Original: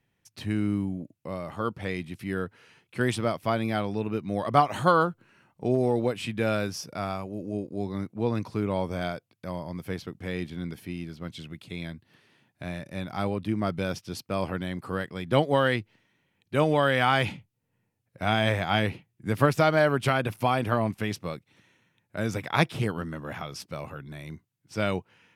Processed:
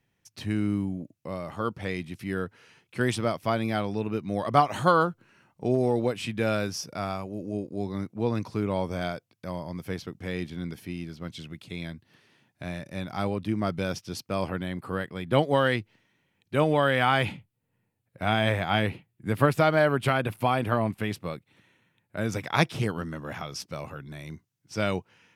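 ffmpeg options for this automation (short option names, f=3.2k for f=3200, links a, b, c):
-af "asetnsamples=n=441:p=0,asendcmd='14.49 equalizer g -7.5;15.39 equalizer g 1;16.55 equalizer g -6.5;22.32 equalizer g 5',equalizer=f=5.8k:t=o:w=0.58:g=3"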